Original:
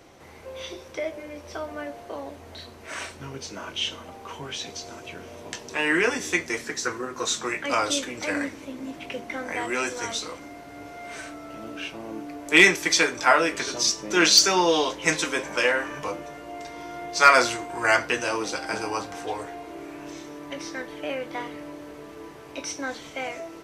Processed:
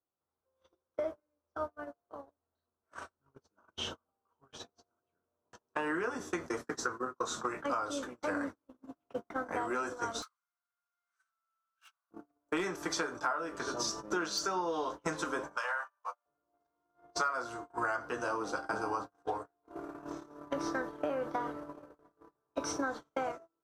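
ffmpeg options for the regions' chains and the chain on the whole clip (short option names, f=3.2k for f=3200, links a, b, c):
-filter_complex "[0:a]asettb=1/sr,asplit=3[a][b][c];[a]atrim=end=10.224[d];[b]atrim=start=10.22:end=12.11,asetpts=PTS-STARTPTS,afade=t=in:d=0.004:c=qsin,afade=t=out:st=1.886:d=0.004:c=qsin,highshelf=f=2.8k:g=7.5,volume=31dB,asoftclip=hard,volume=-31dB,highpass=f=1.2k:w=0.5412,highpass=f=1.2k:w=1.3066[e];[c]atrim=start=12.106[f];[d][e]acrossfade=d=0.004:c1=hsin:c2=qsin[g];[g][f]acrossfade=d=0.004:c1=qsin:c2=hsin,asettb=1/sr,asplit=3[h][i][j];[h]atrim=end=15.574[k];[i]atrim=start=15.57:end=16.26,asetpts=PTS-STARTPTS,afade=t=in:d=0.004:c=qsin,afade=t=out:st=0.686:d=0.004:c=qsin,highpass=f=740:w=0.5412,highpass=f=740:w=1.3066,acompressor=threshold=-28dB:ratio=2:attack=3.2:release=140:knee=1:detection=peak[l];[j]atrim=start=16.256[m];[k][l]acrossfade=d=0.004:c1=hsin:c2=qsin[n];[n][m]acrossfade=d=0.004:c1=qsin:c2=hsin,asettb=1/sr,asplit=3[o][p][q];[o]atrim=end=19.634[r];[p]atrim=start=19.63:end=23.32,asetpts=PTS-STARTPTS,afade=t=in:d=0.004:c=qsin,afade=t=out:st=3.686:d=0.004:c=qsin,bandreject=f=3k:w=29,acontrast=25,aecho=1:1:694:0.133,atrim=end_sample=162729[s];[q]atrim=start=23.316[t];[r][s]acrossfade=d=0.004:c1=hsin:c2=qsin[u];[u][t]acrossfade=d=0.004:c1=qsin:c2=hsin,agate=range=-45dB:threshold=-31dB:ratio=16:detection=peak,highshelf=f=1.7k:t=q:w=3:g=-8,acompressor=threshold=-31dB:ratio=10"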